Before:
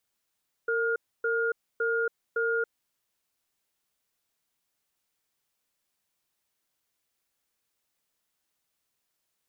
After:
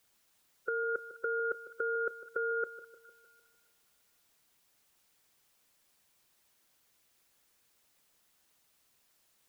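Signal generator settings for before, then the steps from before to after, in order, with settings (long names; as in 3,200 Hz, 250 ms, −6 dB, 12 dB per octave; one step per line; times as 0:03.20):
tone pair in a cadence 458 Hz, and 1,420 Hz, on 0.28 s, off 0.28 s, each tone −27 dBFS 2.03 s
harmonic and percussive parts rebalanced percussive +4 dB
compressor whose output falls as the input rises −33 dBFS, ratio −1
echo with a time of its own for lows and highs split 1,400 Hz, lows 152 ms, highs 206 ms, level −13.5 dB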